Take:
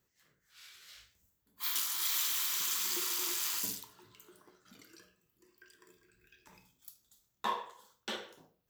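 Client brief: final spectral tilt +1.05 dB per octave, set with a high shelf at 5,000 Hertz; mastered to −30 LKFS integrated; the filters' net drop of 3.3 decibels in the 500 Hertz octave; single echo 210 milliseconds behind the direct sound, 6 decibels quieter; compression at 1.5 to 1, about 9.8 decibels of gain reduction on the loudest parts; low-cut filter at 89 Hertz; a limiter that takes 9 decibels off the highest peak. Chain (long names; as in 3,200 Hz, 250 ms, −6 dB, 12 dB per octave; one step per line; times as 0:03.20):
high-pass filter 89 Hz
parametric band 500 Hz −4.5 dB
high-shelf EQ 5,000 Hz +7 dB
downward compressor 1.5 to 1, threshold −52 dBFS
brickwall limiter −30.5 dBFS
single-tap delay 210 ms −6 dB
level +10 dB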